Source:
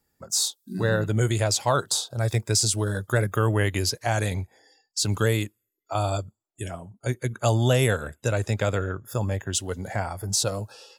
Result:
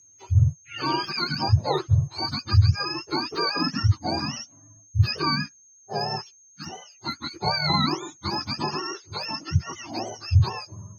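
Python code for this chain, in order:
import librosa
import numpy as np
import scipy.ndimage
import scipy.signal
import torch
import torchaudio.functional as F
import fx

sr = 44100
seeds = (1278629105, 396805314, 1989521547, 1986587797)

y = fx.octave_mirror(x, sr, pivot_hz=720.0)
y = y + 10.0 ** (-52.0 / 20.0) * np.sin(2.0 * np.pi * 6400.0 * np.arange(len(y)) / sr)
y = fx.vibrato(y, sr, rate_hz=8.0, depth_cents=13.0)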